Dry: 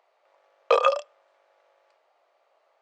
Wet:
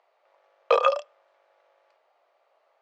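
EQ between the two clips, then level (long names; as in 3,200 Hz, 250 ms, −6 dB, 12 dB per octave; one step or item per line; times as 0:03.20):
high-pass filter 260 Hz
high-frequency loss of the air 64 metres
0.0 dB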